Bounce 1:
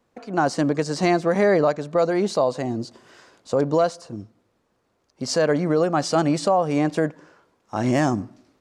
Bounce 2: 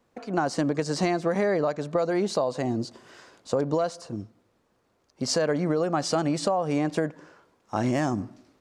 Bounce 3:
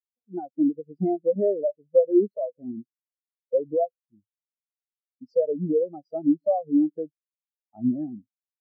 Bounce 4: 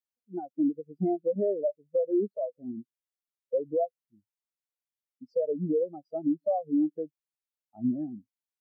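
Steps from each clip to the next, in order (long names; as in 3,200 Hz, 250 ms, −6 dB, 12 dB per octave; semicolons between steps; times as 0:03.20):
downward compressor, threshold −21 dBFS, peak gain reduction 7 dB
every bin expanded away from the loudest bin 4 to 1; level +1.5 dB
brickwall limiter −16.5 dBFS, peak gain reduction 7.5 dB; level −3 dB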